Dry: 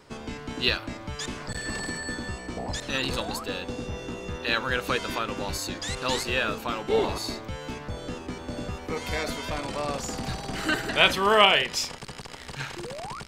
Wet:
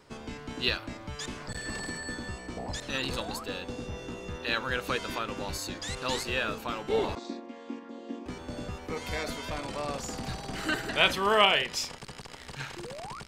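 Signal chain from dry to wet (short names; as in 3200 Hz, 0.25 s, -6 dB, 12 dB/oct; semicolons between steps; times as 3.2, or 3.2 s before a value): 7.15–8.26 chord vocoder minor triad, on A#3; gain -4 dB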